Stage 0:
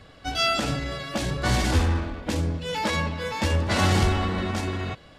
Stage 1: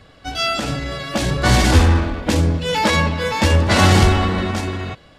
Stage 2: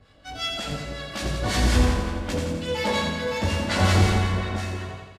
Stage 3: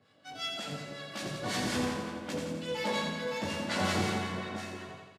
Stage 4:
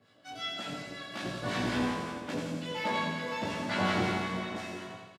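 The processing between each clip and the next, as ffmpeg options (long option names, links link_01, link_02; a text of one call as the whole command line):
ffmpeg -i in.wav -af "dynaudnorm=framelen=310:gausssize=7:maxgain=8.5dB,volume=2dB" out.wav
ffmpeg -i in.wav -filter_complex "[0:a]asplit=2[link_01][link_02];[link_02]aecho=0:1:20|52|103.2|185.1|316.2:0.631|0.398|0.251|0.158|0.1[link_03];[link_01][link_03]amix=inputs=2:normalize=0,acrossover=split=1000[link_04][link_05];[link_04]aeval=exprs='val(0)*(1-0.7/2+0.7/2*cos(2*PI*5.5*n/s))':channel_layout=same[link_06];[link_05]aeval=exprs='val(0)*(1-0.7/2-0.7/2*cos(2*PI*5.5*n/s))':channel_layout=same[link_07];[link_06][link_07]amix=inputs=2:normalize=0,asplit=2[link_08][link_09];[link_09]aecho=0:1:85|170|255|340|425|510|595|680:0.562|0.321|0.183|0.104|0.0594|0.0338|0.0193|0.011[link_10];[link_08][link_10]amix=inputs=2:normalize=0,volume=-8dB" out.wav
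ffmpeg -i in.wav -af "highpass=frequency=130:width=0.5412,highpass=frequency=130:width=1.3066,volume=-7.5dB" out.wav
ffmpeg -i in.wav -filter_complex "[0:a]asplit=2[link_01][link_02];[link_02]adelay=17,volume=-3dB[link_03];[link_01][link_03]amix=inputs=2:normalize=0,acrossover=split=3800[link_04][link_05];[link_05]acompressor=threshold=-50dB:ratio=4:attack=1:release=60[link_06];[link_04][link_06]amix=inputs=2:normalize=0" out.wav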